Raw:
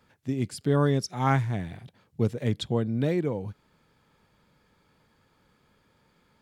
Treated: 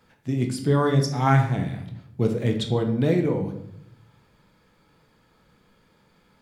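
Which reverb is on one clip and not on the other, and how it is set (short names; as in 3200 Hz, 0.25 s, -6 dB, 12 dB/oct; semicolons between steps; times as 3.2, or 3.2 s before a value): shoebox room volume 170 m³, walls mixed, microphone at 0.66 m; gain +2.5 dB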